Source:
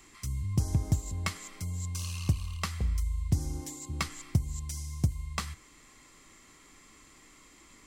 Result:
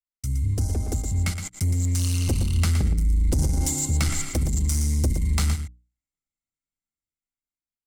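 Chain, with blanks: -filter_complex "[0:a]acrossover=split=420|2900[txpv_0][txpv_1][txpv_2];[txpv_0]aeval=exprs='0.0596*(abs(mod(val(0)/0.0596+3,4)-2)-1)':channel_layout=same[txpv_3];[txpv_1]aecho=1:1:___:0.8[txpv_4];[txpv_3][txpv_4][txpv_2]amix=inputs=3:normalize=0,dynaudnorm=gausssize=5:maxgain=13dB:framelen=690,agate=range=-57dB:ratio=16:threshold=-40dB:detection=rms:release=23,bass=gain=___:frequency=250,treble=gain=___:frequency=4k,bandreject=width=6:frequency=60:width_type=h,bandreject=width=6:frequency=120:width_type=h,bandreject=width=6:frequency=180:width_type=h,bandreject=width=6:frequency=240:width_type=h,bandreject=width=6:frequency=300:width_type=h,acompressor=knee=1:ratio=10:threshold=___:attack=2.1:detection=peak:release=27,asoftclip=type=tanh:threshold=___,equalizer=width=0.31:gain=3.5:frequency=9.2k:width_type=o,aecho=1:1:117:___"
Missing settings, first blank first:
1.4, 11, 6, -15dB, -18dB, 0.398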